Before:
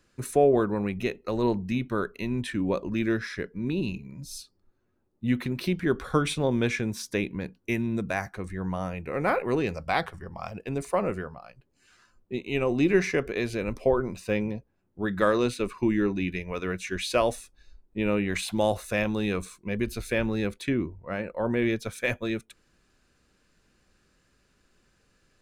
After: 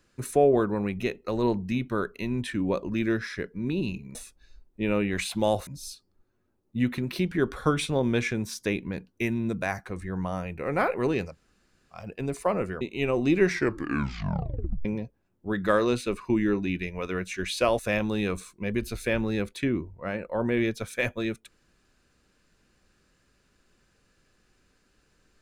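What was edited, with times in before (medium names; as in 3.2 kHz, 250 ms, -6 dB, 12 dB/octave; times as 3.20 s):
9.78–10.46 s: room tone, crossfade 0.16 s
11.29–12.34 s: delete
12.99 s: tape stop 1.39 s
17.32–18.84 s: move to 4.15 s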